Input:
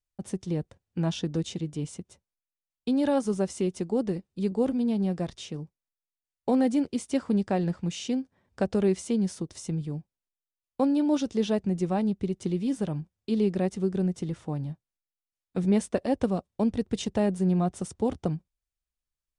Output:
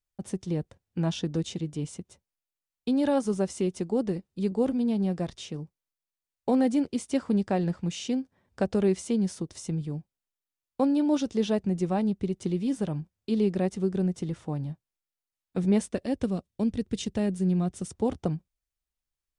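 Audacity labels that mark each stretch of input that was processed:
15.900000	17.900000	peaking EQ 830 Hz -8.5 dB 1.6 oct

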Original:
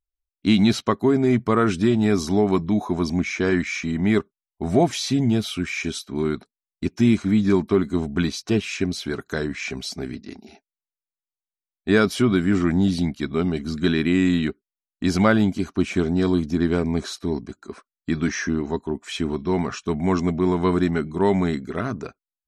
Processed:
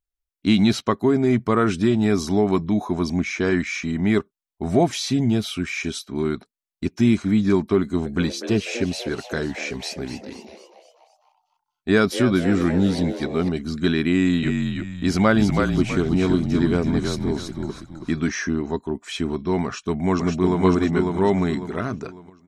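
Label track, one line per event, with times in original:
7.800000	13.490000	frequency-shifting echo 247 ms, feedback 50%, per repeat +130 Hz, level -11.5 dB
14.100000	18.240000	frequency-shifting echo 325 ms, feedback 33%, per repeat -42 Hz, level -4.5 dB
19.640000	20.640000	echo throw 550 ms, feedback 35%, level -3 dB

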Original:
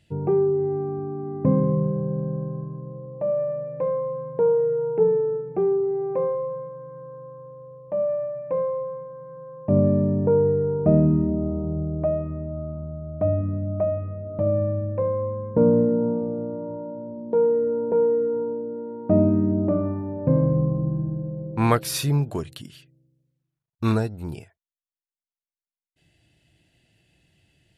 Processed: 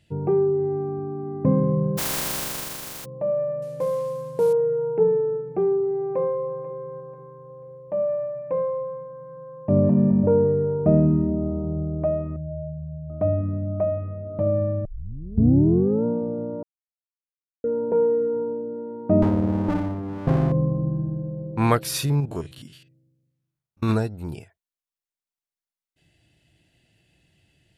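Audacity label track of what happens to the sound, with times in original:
1.970000	3.040000	spectral contrast reduction exponent 0.11
3.620000	4.530000	CVSD coder 64 kbps
5.720000	6.510000	echo throw 490 ms, feedback 45%, level -15 dB
9.600000	10.020000	echo throw 210 ms, feedback 40%, level -2 dB
12.360000	13.100000	spectral contrast enhancement exponent 3.2
14.850000	14.850000	tape start 1.20 s
16.630000	17.640000	mute
19.220000	20.520000	sliding maximum over 33 samples
22.050000	23.900000	spectrogram pixelated in time every 50 ms

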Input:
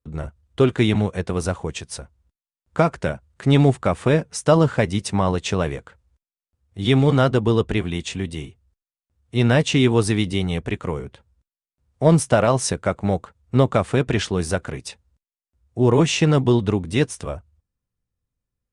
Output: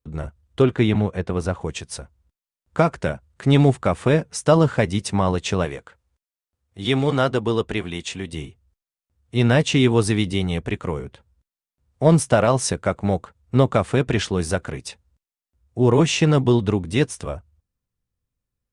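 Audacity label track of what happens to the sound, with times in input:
0.620000	1.610000	treble shelf 4.6 kHz -11 dB
5.650000	8.330000	bass shelf 240 Hz -8 dB

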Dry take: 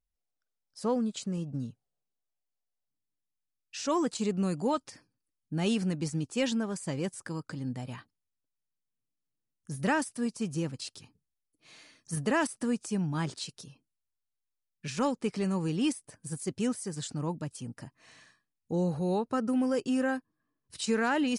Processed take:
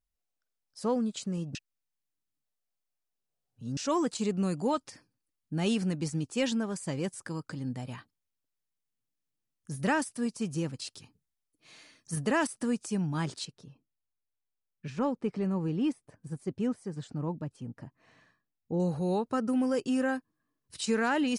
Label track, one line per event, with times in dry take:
1.550000	3.770000	reverse
13.450000	18.800000	low-pass 1.1 kHz 6 dB/octave

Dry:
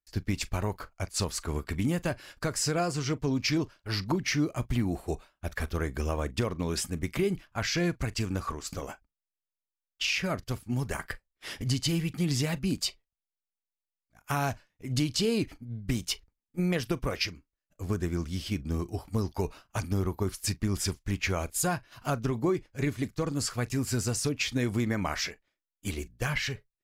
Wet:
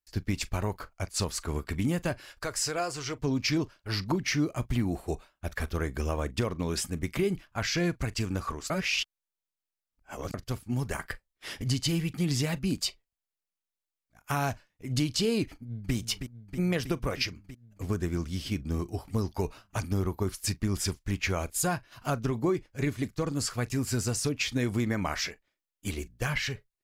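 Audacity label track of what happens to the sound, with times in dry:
2.250000	3.190000	peaking EQ 190 Hz -14 dB 1.3 oct
8.700000	10.340000	reverse
15.520000	15.940000	echo throw 320 ms, feedback 80%, level -8.5 dB

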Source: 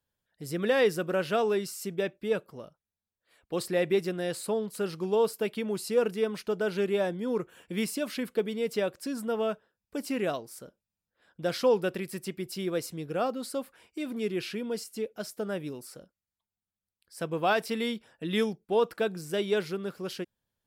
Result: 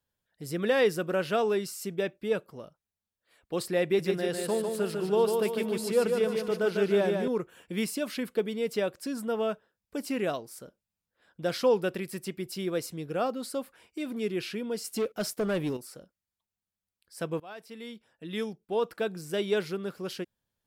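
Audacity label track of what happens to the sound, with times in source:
3.840000	7.280000	feedback delay 149 ms, feedback 48%, level -4.5 dB
14.840000	15.770000	waveshaping leveller passes 2
17.400000	19.470000	fade in, from -24 dB

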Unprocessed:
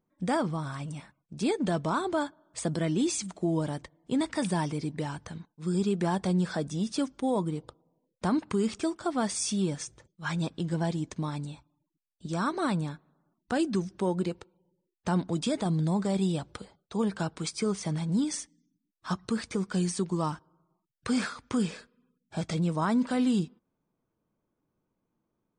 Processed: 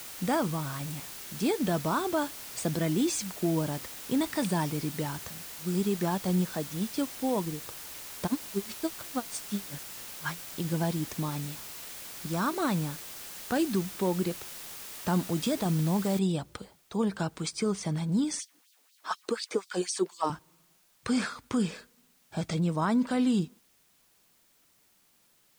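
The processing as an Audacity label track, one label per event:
5.290000	7.650000	upward expansion, over -44 dBFS
8.260000	10.630000	logarithmic tremolo 9 Hz -> 2.9 Hz, depth 38 dB
16.190000	16.190000	noise floor step -43 dB -66 dB
18.390000	20.300000	LFO high-pass sine 4.1 Hz 340–4600 Hz

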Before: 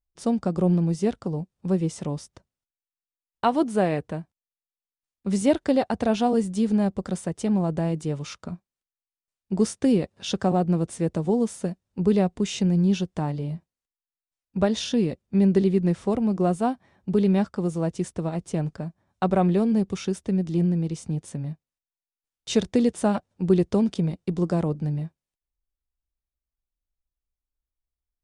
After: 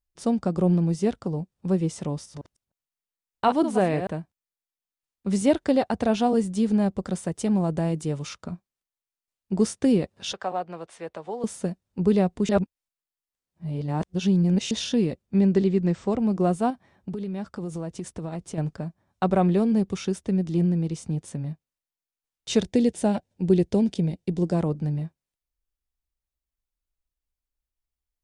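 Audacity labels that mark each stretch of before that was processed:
2.110000	4.070000	chunks repeated in reverse 152 ms, level -8 dB
7.250000	8.290000	treble shelf 8.4 kHz +7.5 dB
10.330000	11.440000	three-band isolator lows -22 dB, under 540 Hz, highs -14 dB, over 4.2 kHz
12.490000	14.710000	reverse
15.410000	16.190000	Chebyshev low-pass 8.4 kHz, order 8
16.700000	18.580000	compression 10:1, threshold -28 dBFS
22.630000	24.550000	peaking EQ 1.2 kHz -13 dB 0.48 oct

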